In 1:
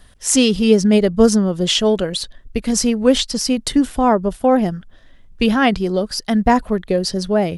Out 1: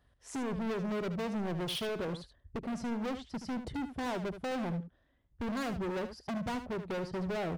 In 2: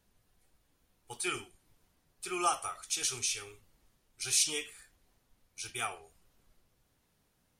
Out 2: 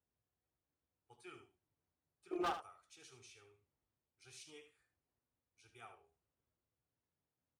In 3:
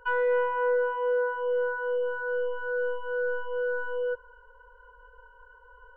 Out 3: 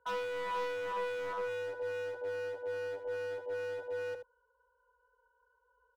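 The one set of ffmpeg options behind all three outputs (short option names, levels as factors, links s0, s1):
-af "lowpass=f=1300:p=1,afwtdn=0.0398,highpass=f=61:w=0.5412,highpass=f=61:w=1.3066,equalizer=f=200:t=o:w=0.24:g=-8,acompressor=threshold=0.0562:ratio=2.5,volume=50.1,asoftclip=hard,volume=0.02,aecho=1:1:76:0.299"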